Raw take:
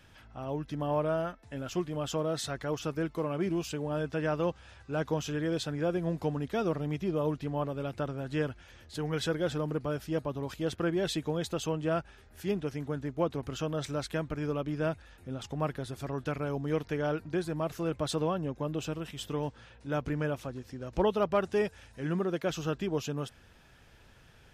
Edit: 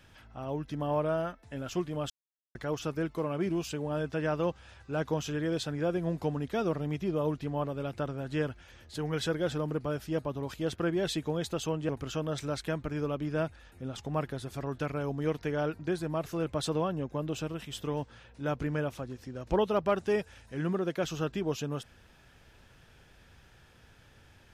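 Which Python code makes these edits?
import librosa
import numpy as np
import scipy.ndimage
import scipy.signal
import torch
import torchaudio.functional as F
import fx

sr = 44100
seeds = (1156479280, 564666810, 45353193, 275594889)

y = fx.edit(x, sr, fx.silence(start_s=2.1, length_s=0.45),
    fx.cut(start_s=11.89, length_s=1.46), tone=tone)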